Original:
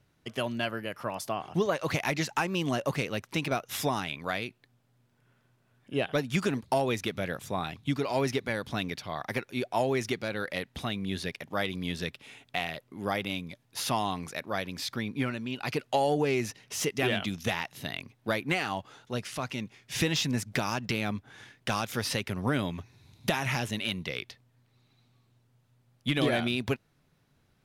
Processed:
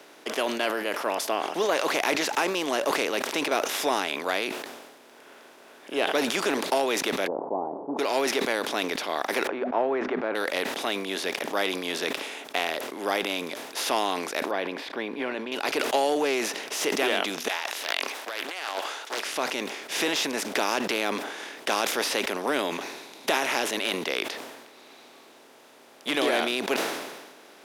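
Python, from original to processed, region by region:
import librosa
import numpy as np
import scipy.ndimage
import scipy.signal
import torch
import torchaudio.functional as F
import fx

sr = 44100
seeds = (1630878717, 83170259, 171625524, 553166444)

y = fx.chain(x, sr, fx.delta_mod(bps=32000, step_db=-43.0),
    fx.steep_lowpass(hz=940.0, slope=72), at=(7.27, 7.99))
y = fx.chain(y, sr, fx.lowpass(hz=1500.0, slope=24),
    fx.hum_notches(base_hz=50, count=5), at=(9.47, 10.35))
y = fx.chain(y, sr, fx.air_absorb(metres=480.0),
    fx.notch(hz=1300.0, q=6.6), at=(14.51, 15.52))
y = fx.chain(y, sr, fx.highpass(hz=930.0, slope=12),
    fx.over_compress(threshold_db=-41.0, ratio=-1.0),
    fx.doppler_dist(depth_ms=0.68), at=(17.48, 19.25))
y = fx.bin_compress(y, sr, power=0.6)
y = scipy.signal.sosfilt(scipy.signal.butter(4, 300.0, 'highpass', fs=sr, output='sos'), y)
y = fx.sustainer(y, sr, db_per_s=44.0)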